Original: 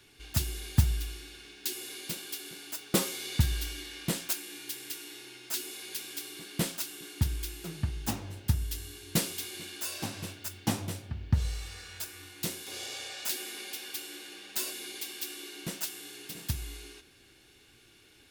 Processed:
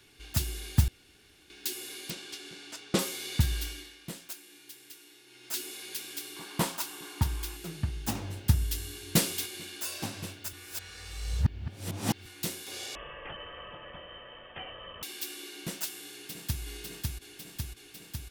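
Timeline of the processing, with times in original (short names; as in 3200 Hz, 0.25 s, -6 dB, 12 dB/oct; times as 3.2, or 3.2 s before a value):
0.88–1.5 room tone
2.1–2.99 LPF 6700 Hz
3.65–5.58 dip -10 dB, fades 0.32 s
6.36–7.57 bell 970 Hz +14 dB 0.79 oct
8.15–9.46 gain +3.5 dB
10.53–12.26 reverse
12.95–15.03 inverted band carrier 3400 Hz
16.11–16.63 echo throw 0.55 s, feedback 75%, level -1.5 dB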